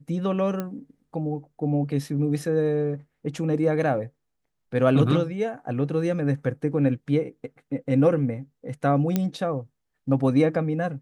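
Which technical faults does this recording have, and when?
0.60 s: pop -16 dBFS
9.16 s: pop -10 dBFS

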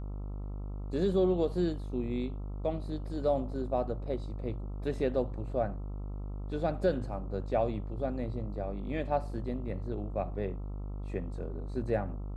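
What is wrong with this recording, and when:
buzz 50 Hz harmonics 27 -38 dBFS

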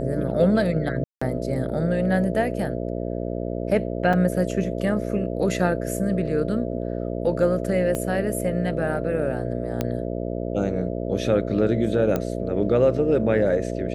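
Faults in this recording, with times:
buzz 60 Hz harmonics 11 -28 dBFS
1.04–1.22 s: dropout 175 ms
4.13 s: dropout 4.7 ms
7.95 s: pop -14 dBFS
9.81 s: pop -11 dBFS
12.16 s: pop -11 dBFS

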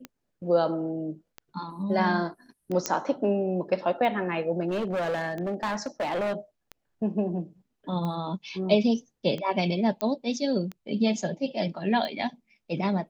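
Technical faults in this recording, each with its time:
tick 45 rpm -22 dBFS
2.86 s: pop -10 dBFS
4.68–6.33 s: clipped -25 dBFS
10.01 s: pop -14 dBFS

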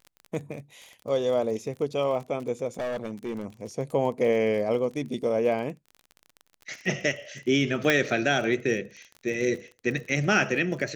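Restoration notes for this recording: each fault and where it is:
crackle 29 per s -35 dBFS
2.77–3.45 s: clipped -27 dBFS
7.90 s: pop -8 dBFS

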